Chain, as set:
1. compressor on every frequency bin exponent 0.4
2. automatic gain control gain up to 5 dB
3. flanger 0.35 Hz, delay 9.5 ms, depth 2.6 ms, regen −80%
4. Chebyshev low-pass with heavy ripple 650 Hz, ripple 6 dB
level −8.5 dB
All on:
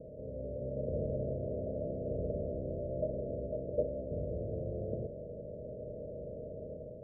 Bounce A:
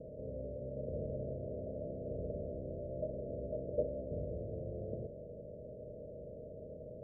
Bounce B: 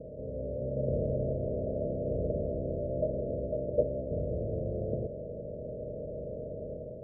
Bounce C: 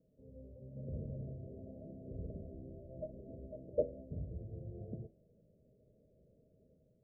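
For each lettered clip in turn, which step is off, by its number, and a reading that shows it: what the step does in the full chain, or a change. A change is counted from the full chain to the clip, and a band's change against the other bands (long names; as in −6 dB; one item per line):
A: 2, change in crest factor +2.0 dB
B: 3, change in integrated loudness +4.5 LU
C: 1, change in crest factor +8.0 dB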